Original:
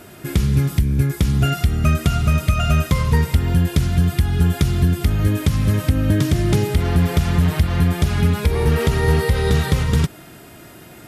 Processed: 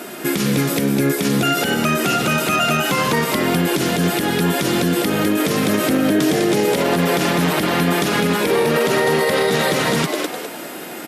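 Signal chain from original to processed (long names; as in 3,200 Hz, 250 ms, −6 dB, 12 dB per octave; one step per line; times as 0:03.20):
high-pass filter 210 Hz 24 dB per octave
on a send: echo with shifted repeats 203 ms, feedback 35%, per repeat +140 Hz, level −7.5 dB
on the sum: boost into a limiter +18 dB
level −7.5 dB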